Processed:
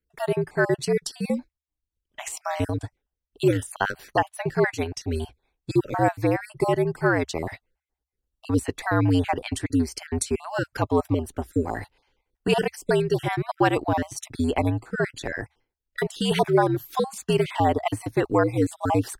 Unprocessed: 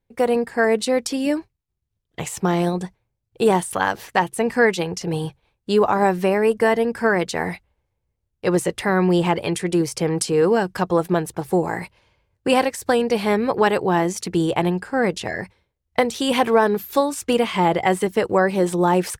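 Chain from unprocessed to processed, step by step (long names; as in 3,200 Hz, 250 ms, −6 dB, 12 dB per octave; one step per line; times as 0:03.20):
time-frequency cells dropped at random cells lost 32%
transient designer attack 0 dB, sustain −4 dB
frequency shifter −74 Hz
level −2.5 dB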